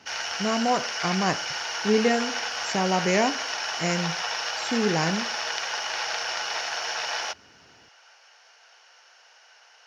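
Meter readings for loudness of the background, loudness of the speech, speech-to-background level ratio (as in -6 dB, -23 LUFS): -28.5 LUFS, -26.5 LUFS, 2.0 dB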